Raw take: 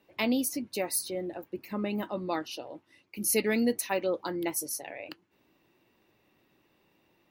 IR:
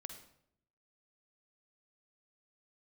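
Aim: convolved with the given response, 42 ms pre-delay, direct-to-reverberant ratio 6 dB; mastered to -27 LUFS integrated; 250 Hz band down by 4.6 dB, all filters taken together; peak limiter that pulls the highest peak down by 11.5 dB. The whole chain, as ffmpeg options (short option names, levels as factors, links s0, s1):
-filter_complex "[0:a]equalizer=f=250:t=o:g=-5.5,alimiter=level_in=1.19:limit=0.0631:level=0:latency=1,volume=0.841,asplit=2[s0][s1];[1:a]atrim=start_sample=2205,adelay=42[s2];[s1][s2]afir=irnorm=-1:irlink=0,volume=0.794[s3];[s0][s3]amix=inputs=2:normalize=0,volume=2.82"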